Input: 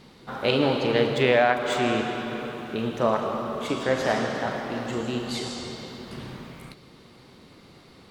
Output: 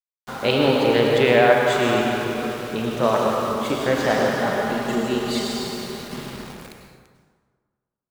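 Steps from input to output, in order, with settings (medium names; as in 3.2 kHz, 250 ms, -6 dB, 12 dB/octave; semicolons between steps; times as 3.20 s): 3.03–3.52 s: treble shelf 4.1 kHz +11.5 dB; 4.38–6.34 s: comb 4.9 ms, depth 60%; small samples zeroed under -37.5 dBFS; plate-style reverb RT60 1.6 s, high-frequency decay 0.6×, pre-delay 85 ms, DRR 2 dB; trim +2.5 dB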